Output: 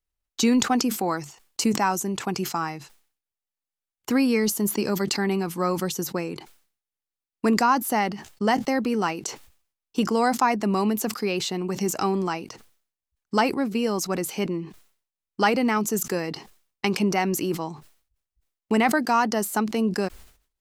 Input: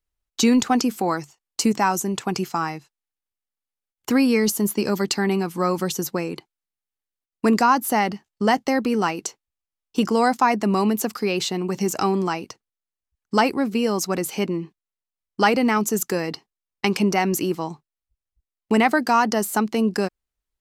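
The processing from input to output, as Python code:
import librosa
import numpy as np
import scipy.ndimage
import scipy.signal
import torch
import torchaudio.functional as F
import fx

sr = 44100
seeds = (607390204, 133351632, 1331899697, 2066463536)

y = fx.sustainer(x, sr, db_per_s=120.0)
y = F.gain(torch.from_numpy(y), -3.0).numpy()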